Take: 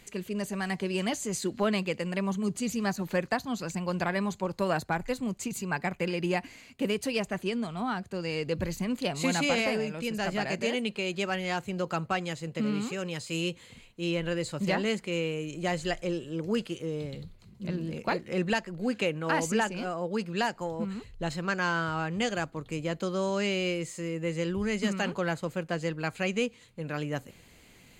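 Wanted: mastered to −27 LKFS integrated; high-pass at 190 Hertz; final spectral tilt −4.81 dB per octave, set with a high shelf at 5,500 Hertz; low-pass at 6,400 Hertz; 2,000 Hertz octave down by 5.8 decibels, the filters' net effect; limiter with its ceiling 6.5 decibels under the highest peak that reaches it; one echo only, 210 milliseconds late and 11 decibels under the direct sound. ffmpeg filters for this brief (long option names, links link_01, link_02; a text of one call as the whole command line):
ffmpeg -i in.wav -af "highpass=190,lowpass=6400,equalizer=frequency=2000:width_type=o:gain=-8.5,highshelf=frequency=5500:gain=5,alimiter=limit=-22.5dB:level=0:latency=1,aecho=1:1:210:0.282,volume=7dB" out.wav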